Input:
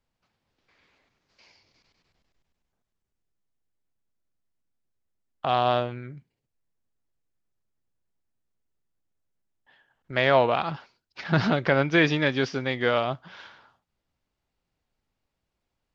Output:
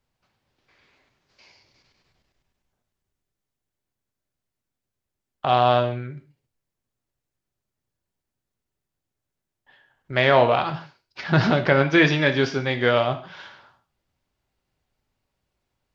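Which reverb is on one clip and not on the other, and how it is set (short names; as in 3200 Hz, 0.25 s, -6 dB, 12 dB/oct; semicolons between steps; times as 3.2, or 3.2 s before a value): non-linear reverb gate 0.18 s falling, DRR 7 dB; gain +3 dB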